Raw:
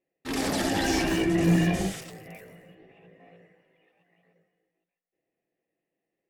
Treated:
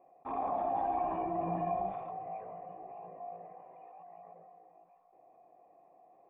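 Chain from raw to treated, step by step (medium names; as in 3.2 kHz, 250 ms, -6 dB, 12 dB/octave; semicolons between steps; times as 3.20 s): cascade formant filter a; level flattener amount 50%; trim +5.5 dB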